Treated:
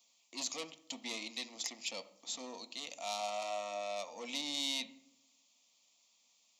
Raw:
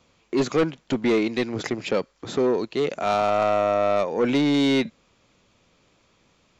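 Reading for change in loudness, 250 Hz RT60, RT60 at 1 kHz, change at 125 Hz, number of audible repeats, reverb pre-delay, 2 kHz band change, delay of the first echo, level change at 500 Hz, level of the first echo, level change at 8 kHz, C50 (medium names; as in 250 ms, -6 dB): -16.5 dB, 1.1 s, 0.65 s, under -35 dB, no echo, 4 ms, -14.5 dB, no echo, -22.5 dB, no echo, no reading, 15.0 dB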